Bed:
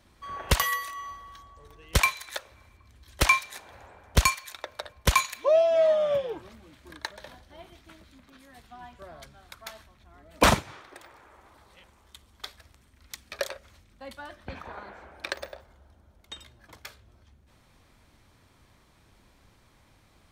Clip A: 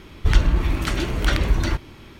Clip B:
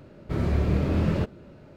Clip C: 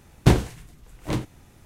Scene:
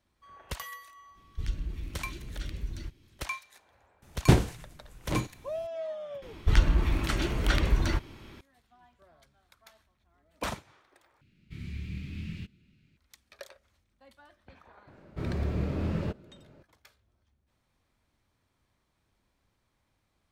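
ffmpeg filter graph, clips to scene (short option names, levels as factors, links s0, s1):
-filter_complex "[1:a]asplit=2[s0][s1];[2:a]asplit=2[s2][s3];[0:a]volume=0.178[s4];[s0]equalizer=f=930:t=o:w=2.1:g=-15[s5];[s2]firequalizer=gain_entry='entry(200,0);entry(570,-27);entry(2300,9);entry(5100,4)':delay=0.05:min_phase=1[s6];[s4]asplit=2[s7][s8];[s7]atrim=end=11.214[s9];[s6]atrim=end=1.76,asetpts=PTS-STARTPTS,volume=0.2[s10];[s8]atrim=start=12.966[s11];[s5]atrim=end=2.19,asetpts=PTS-STARTPTS,volume=0.158,afade=t=in:d=0.05,afade=t=out:st=2.14:d=0.05,adelay=1130[s12];[3:a]atrim=end=1.65,asetpts=PTS-STARTPTS,volume=0.668,afade=t=in:d=0.004:c=hsin,afade=t=out:st=1.646:d=0.004:c=hsin,adelay=4020[s13];[s1]atrim=end=2.19,asetpts=PTS-STARTPTS,volume=0.531,afade=t=in:d=0.004:c=hsin,afade=t=out:st=2.186:d=0.004:c=hsin,adelay=6220[s14];[s3]atrim=end=1.76,asetpts=PTS-STARTPTS,volume=0.447,afade=t=in:d=0.004:c=hsin,afade=t=out:st=1.756:d=0.004:c=hsin,adelay=14870[s15];[s9][s10]acrossfade=d=0.004:c1=hsin:c2=hsin[s16];[s16][s11]acrossfade=d=0.004:c1=hsin:c2=hsin[s17];[s17][s12][s13][s14][s15]amix=inputs=5:normalize=0"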